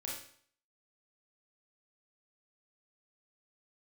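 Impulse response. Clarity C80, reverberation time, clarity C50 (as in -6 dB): 6.5 dB, 0.55 s, 2.0 dB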